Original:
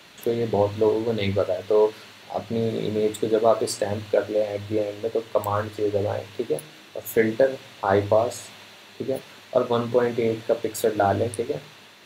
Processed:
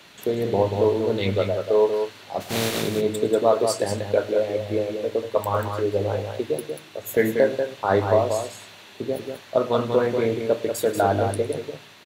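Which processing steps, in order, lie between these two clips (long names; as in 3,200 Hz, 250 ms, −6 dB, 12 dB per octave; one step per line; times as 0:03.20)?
0:02.40–0:02.81: compressing power law on the bin magnitudes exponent 0.47
on a send: multi-tap delay 108/188 ms −19.5/−6.5 dB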